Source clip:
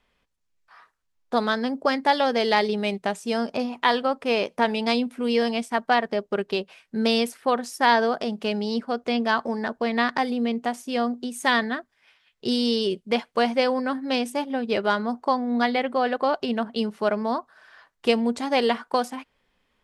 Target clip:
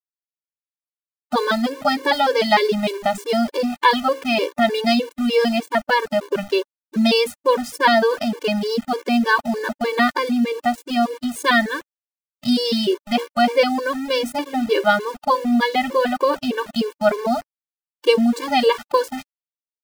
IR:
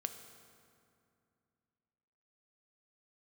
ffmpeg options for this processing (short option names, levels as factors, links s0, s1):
-af "bandreject=f=67.6:t=h:w=4,bandreject=f=135.2:t=h:w=4,bandreject=f=202.8:t=h:w=4,bandreject=f=270.4:t=h:w=4,bandreject=f=338:t=h:w=4,bandreject=f=405.6:t=h:w=4,bandreject=f=473.2:t=h:w=4,bandreject=f=540.8:t=h:w=4,aeval=exprs='val(0)*gte(abs(val(0)),0.0158)':c=same,afftfilt=real='re*gt(sin(2*PI*3.3*pts/sr)*(1-2*mod(floor(b*sr/1024/300),2)),0)':imag='im*gt(sin(2*PI*3.3*pts/sr)*(1-2*mod(floor(b*sr/1024/300),2)),0)':win_size=1024:overlap=0.75,volume=2.51"